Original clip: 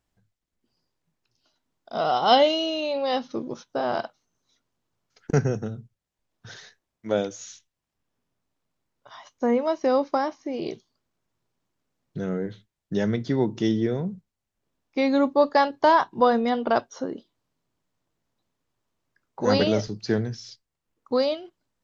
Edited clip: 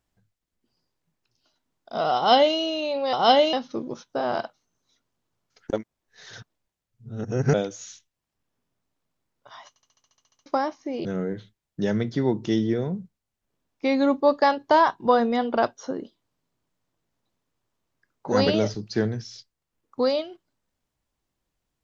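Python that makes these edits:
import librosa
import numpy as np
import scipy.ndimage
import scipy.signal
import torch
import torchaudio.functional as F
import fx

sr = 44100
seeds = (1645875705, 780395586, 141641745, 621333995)

y = fx.edit(x, sr, fx.duplicate(start_s=2.16, length_s=0.4, to_s=3.13),
    fx.reverse_span(start_s=5.33, length_s=1.81),
    fx.stutter_over(start_s=9.29, slice_s=0.07, count=11),
    fx.cut(start_s=10.65, length_s=1.53), tone=tone)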